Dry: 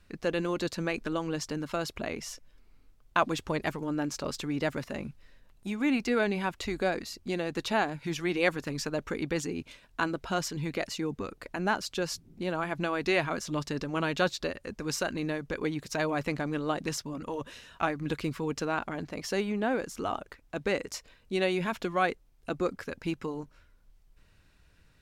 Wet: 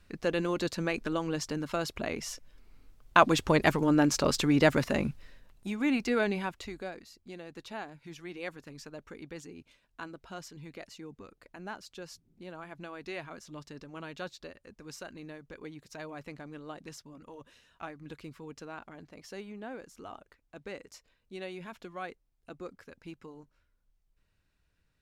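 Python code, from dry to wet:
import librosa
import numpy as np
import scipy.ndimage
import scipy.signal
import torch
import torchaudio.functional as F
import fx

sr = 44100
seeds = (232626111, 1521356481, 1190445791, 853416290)

y = fx.gain(x, sr, db=fx.line((1.95, 0.0), (3.77, 7.5), (5.08, 7.5), (5.68, -1.0), (6.33, -1.0), (6.96, -13.0)))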